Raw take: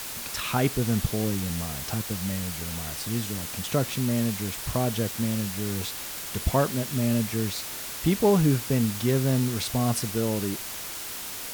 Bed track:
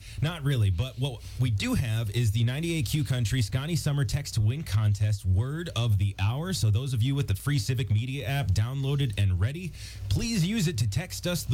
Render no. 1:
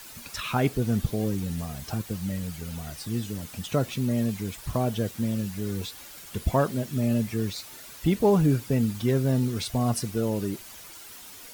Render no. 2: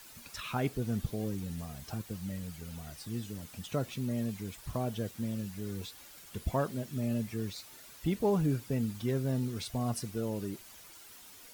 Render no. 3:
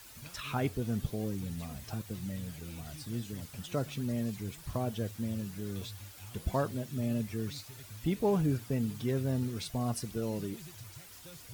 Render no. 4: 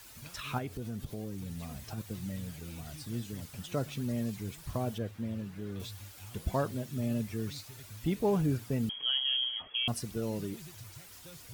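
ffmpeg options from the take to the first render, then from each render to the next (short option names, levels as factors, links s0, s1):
-af "afftdn=nr=11:nf=-36"
-af "volume=0.398"
-filter_complex "[1:a]volume=0.0668[s0];[0:a][s0]amix=inputs=2:normalize=0"
-filter_complex "[0:a]asettb=1/sr,asplit=3[s0][s1][s2];[s0]atrim=end=0.584[s3];[s1]atrim=start=0.58:end=1.98,asetpts=PTS-STARTPTS,afade=t=in:d=0.004:c=qsin,afade=t=out:st=1.396:d=0.004:c=qsin,acompressor=threshold=0.0158:ratio=3:attack=3.2:release=140:knee=1:detection=peak[s4];[s2]atrim=start=1.976[s5];[s3][s4]acrossfade=d=0.004:c1=hsin:c2=qsin[s6];[s6][s5]acrossfade=d=0.004:c1=qsin:c2=hsin,asettb=1/sr,asplit=3[s7][s8][s9];[s7]atrim=end=4.984[s10];[s8]atrim=start=4.98:end=5.8,asetpts=PTS-STARTPTS,afade=t=in:d=0.004:c=qsin,afade=t=out:st=0.816:d=0.004:c=qsin,bass=f=250:g=-2,treble=f=4000:g=-12[s11];[s9]atrim=start=5.796[s12];[s10][s11]acrossfade=d=0.004:c1=hsin:c2=qsin[s13];[s13][s12]acrossfade=d=0.004:c1=qsin:c2=hsin,asettb=1/sr,asplit=3[s14][s15][s16];[s14]atrim=end=8.894[s17];[s15]atrim=start=8.89:end=9.88,asetpts=PTS-STARTPTS,afade=t=in:d=0.004:c=qsin,afade=t=out:st=0.986:d=0.004:c=qsin,lowpass=f=2900:t=q:w=0.5098,lowpass=f=2900:t=q:w=0.6013,lowpass=f=2900:t=q:w=0.9,lowpass=f=2900:t=q:w=2.563,afreqshift=-3400[s18];[s16]atrim=start=9.876[s19];[s17][s18]acrossfade=d=0.004:c1=hsin:c2=qsin[s20];[s20][s19]acrossfade=d=0.004:c1=qsin:c2=hsin"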